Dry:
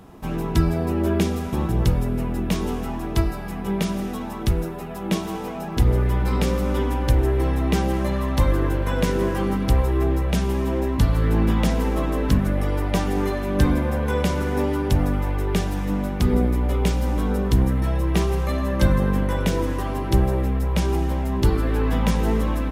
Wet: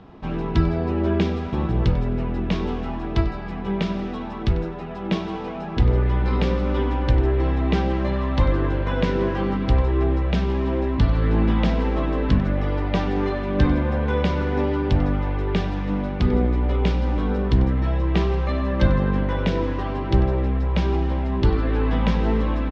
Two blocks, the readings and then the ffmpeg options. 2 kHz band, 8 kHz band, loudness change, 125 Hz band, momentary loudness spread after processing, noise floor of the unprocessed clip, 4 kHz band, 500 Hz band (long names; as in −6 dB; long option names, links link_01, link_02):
0.0 dB, below −15 dB, 0.0 dB, 0.0 dB, 6 LU, −30 dBFS, −1.0 dB, 0.0 dB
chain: -af "lowpass=frequency=4400:width=0.5412,lowpass=frequency=4400:width=1.3066,aecho=1:1:95:0.141"